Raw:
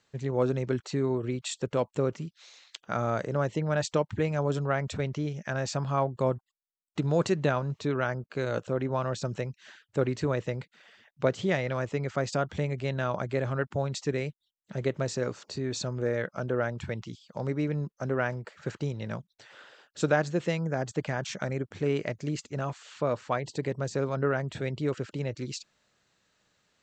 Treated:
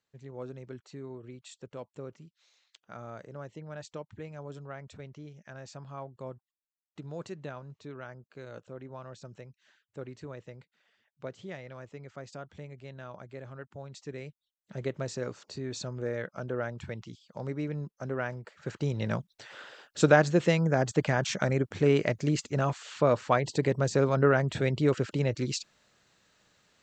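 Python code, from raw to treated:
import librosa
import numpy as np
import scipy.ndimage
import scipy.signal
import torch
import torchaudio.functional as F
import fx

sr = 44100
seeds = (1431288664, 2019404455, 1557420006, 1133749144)

y = fx.gain(x, sr, db=fx.line((13.76, -14.5), (14.79, -4.5), (18.59, -4.5), (19.0, 4.5)))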